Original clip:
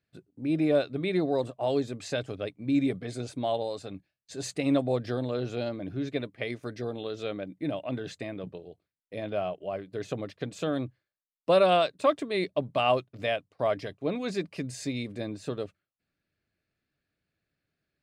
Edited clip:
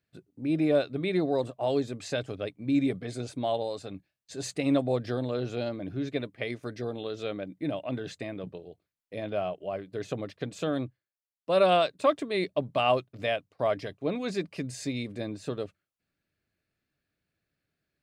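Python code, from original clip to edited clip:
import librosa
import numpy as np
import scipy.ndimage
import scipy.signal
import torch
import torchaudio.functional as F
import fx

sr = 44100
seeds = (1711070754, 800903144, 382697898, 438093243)

y = fx.edit(x, sr, fx.fade_down_up(start_s=10.83, length_s=0.78, db=-9.0, fade_s=0.14), tone=tone)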